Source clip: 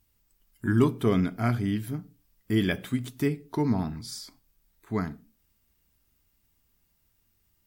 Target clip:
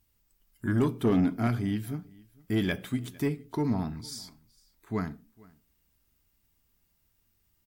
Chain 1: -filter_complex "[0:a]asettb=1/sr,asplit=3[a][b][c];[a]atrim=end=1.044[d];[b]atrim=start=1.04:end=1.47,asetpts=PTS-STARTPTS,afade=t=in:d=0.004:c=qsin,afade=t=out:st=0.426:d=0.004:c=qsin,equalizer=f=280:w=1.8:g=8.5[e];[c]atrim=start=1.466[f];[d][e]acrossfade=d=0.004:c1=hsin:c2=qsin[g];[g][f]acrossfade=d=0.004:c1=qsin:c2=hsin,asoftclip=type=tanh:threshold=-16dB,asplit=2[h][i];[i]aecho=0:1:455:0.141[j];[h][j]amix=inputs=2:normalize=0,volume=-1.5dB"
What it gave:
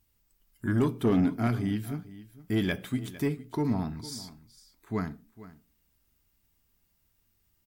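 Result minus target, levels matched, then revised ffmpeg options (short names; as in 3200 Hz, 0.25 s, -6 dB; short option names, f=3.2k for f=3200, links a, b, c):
echo-to-direct +7.5 dB
-filter_complex "[0:a]asettb=1/sr,asplit=3[a][b][c];[a]atrim=end=1.044[d];[b]atrim=start=1.04:end=1.47,asetpts=PTS-STARTPTS,afade=t=in:d=0.004:c=qsin,afade=t=out:st=0.426:d=0.004:c=qsin,equalizer=f=280:w=1.8:g=8.5[e];[c]atrim=start=1.466[f];[d][e]acrossfade=d=0.004:c1=hsin:c2=qsin[g];[g][f]acrossfade=d=0.004:c1=qsin:c2=hsin,asoftclip=type=tanh:threshold=-16dB,asplit=2[h][i];[i]aecho=0:1:455:0.0596[j];[h][j]amix=inputs=2:normalize=0,volume=-1.5dB"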